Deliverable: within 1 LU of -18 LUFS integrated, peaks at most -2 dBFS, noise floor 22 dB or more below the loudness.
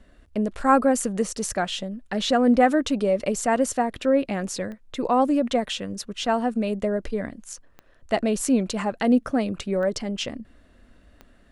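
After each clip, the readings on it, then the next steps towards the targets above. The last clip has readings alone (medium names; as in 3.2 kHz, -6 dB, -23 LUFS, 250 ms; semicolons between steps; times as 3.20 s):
clicks found 4; loudness -24.0 LUFS; peak level -5.5 dBFS; loudness target -18.0 LUFS
-> de-click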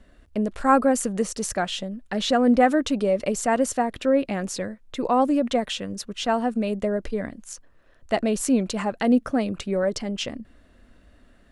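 clicks found 0; loudness -24.0 LUFS; peak level -5.5 dBFS; loudness target -18.0 LUFS
-> trim +6 dB; peak limiter -2 dBFS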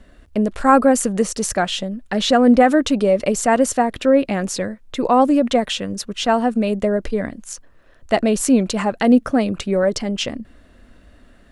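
loudness -18.0 LUFS; peak level -2.0 dBFS; noise floor -50 dBFS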